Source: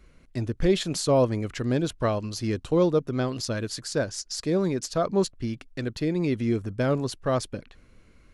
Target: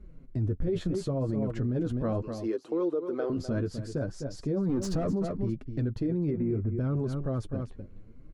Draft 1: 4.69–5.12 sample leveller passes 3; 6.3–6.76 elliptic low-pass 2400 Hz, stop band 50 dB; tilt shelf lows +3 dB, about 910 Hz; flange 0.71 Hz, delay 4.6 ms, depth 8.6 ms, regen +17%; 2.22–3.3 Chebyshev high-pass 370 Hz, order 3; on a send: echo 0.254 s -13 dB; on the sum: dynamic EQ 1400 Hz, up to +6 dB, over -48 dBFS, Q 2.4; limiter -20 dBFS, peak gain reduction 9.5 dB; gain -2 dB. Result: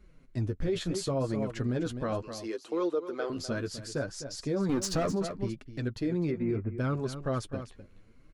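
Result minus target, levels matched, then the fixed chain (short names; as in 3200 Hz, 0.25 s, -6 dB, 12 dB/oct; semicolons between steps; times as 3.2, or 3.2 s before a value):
1000 Hz band +6.0 dB
4.69–5.12 sample leveller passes 3; 6.3–6.76 elliptic low-pass 2400 Hz, stop band 50 dB; tilt shelf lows +12 dB, about 910 Hz; flange 0.71 Hz, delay 4.6 ms, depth 8.6 ms, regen +17%; 2.22–3.3 Chebyshev high-pass 370 Hz, order 3; on a send: echo 0.254 s -13 dB; on the sum: dynamic EQ 1400 Hz, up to +6 dB, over -48 dBFS, Q 2.4; limiter -20 dBFS, peak gain reduction 16 dB; gain -2 dB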